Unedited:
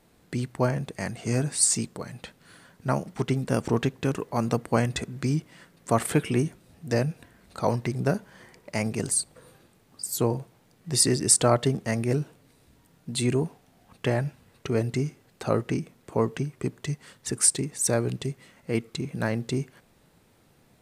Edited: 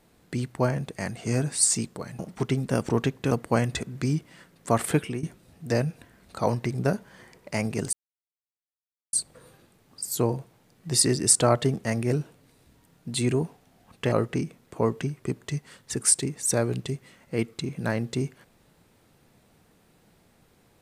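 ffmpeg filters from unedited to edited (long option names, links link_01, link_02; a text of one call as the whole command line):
ffmpeg -i in.wav -filter_complex "[0:a]asplit=6[link_01][link_02][link_03][link_04][link_05][link_06];[link_01]atrim=end=2.192[link_07];[link_02]atrim=start=2.978:end=4.102[link_08];[link_03]atrim=start=4.518:end=6.44,asetpts=PTS-STARTPTS,afade=type=out:start_time=1.652:duration=0.27:silence=0.177828[link_09];[link_04]atrim=start=6.44:end=9.14,asetpts=PTS-STARTPTS,afade=type=in:duration=0.004:curve=hsin:silence=0.177828,afade=type=out:start_time=2.696:duration=0.004:curve=hsin,apad=pad_dur=1.2[link_10];[link_05]atrim=start=9.14:end=14.132,asetpts=PTS-STARTPTS,afade=type=in:duration=0.004:curve=hsin[link_11];[link_06]atrim=start=15.478[link_12];[link_07][link_08]acrossfade=duration=0.004:curve1=hsin:curve2=hsin[link_13];[link_09][link_10][link_11]concat=n=3:v=0:a=1[link_14];[link_13][link_14]acrossfade=duration=0.004:curve1=hsin:curve2=hsin[link_15];[link_15][link_12]acrossfade=duration=0.004:curve1=hsin:curve2=hsin" out.wav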